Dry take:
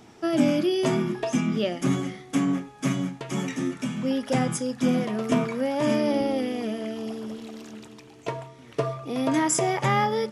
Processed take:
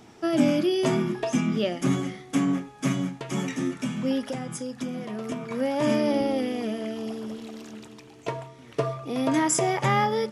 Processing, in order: 4.21–5.51 s: compression 10:1, threshold -29 dBFS, peak gain reduction 12.5 dB

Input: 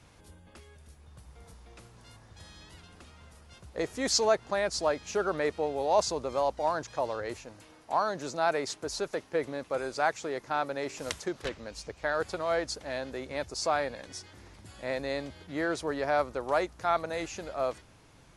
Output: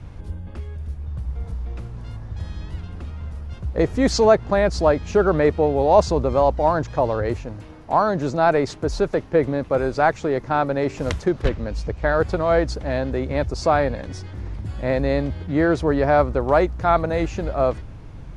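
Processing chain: RIAA curve playback; trim +9 dB

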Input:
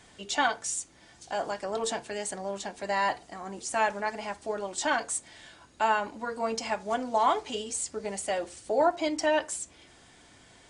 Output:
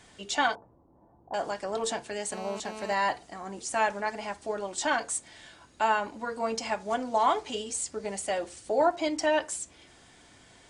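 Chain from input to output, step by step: 0.55–1.34 s: Chebyshev low-pass 1 kHz, order 4; 2.32–2.93 s: mobile phone buzz -41 dBFS

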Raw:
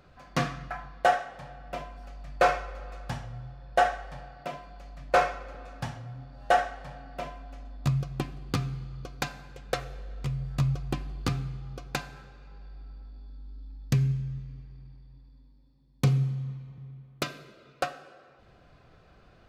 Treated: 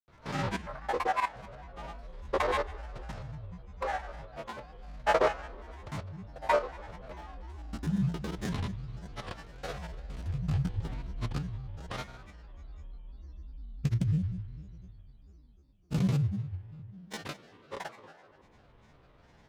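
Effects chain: spectrogram pixelated in time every 100 ms; granulator, pitch spread up and down by 7 st

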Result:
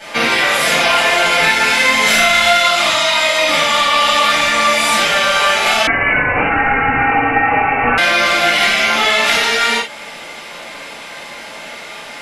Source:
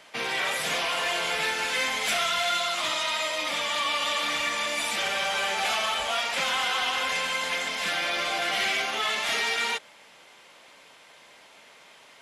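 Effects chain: compression 4:1, threshold -33 dBFS, peak gain reduction 8.5 dB; 1.97–2.61 s: flutter echo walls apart 6.2 m, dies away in 0.65 s; reverberation, pre-delay 3 ms, DRR -11.5 dB; 5.87–7.98 s: frequency inversion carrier 2.9 kHz; loudness maximiser +8.5 dB; trim -1 dB

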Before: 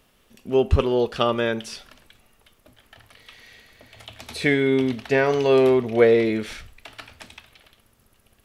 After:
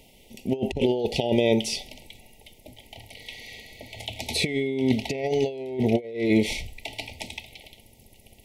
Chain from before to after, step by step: compressor with a negative ratio -24 dBFS, ratio -0.5; brick-wall FIR band-stop 930–1900 Hz; trim +1.5 dB

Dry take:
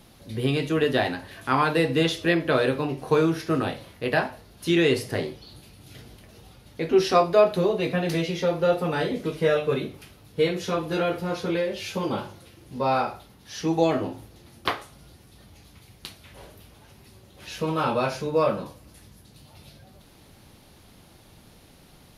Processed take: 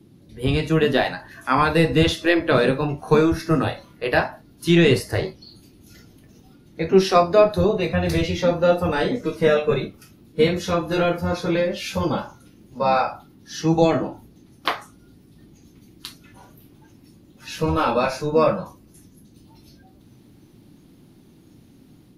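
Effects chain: octave divider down 1 oct, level -2 dB; level rider gain up to 4.5 dB; band noise 96–330 Hz -39 dBFS; spectral noise reduction 12 dB

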